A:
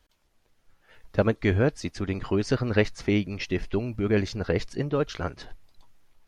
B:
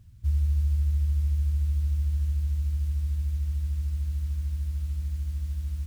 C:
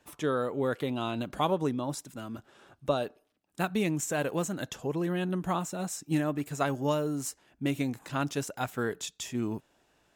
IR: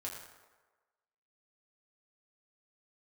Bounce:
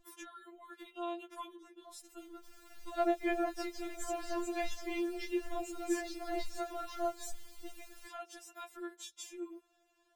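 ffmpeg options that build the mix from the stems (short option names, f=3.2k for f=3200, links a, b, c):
-filter_complex "[0:a]equalizer=f=680:w=5.2:g=11.5,flanger=delay=20:depth=2.7:speed=0.73,adelay=1800,volume=-4.5dB[a];[1:a]bass=f=250:g=-8,treble=f=4k:g=-1,acompressor=threshold=-35dB:ratio=5,adelay=2200,volume=2.5dB[b];[2:a]acompressor=threshold=-35dB:ratio=6,volume=-4dB[c];[a][b][c]amix=inputs=3:normalize=0,equalizer=f=180:t=o:w=0.26:g=-14.5,aeval=exprs='val(0)+0.00158*(sin(2*PI*50*n/s)+sin(2*PI*2*50*n/s)/2+sin(2*PI*3*50*n/s)/3+sin(2*PI*4*50*n/s)/4+sin(2*PI*5*50*n/s)/5)':c=same,afftfilt=real='re*4*eq(mod(b,16),0)':imag='im*4*eq(mod(b,16),0)':win_size=2048:overlap=0.75"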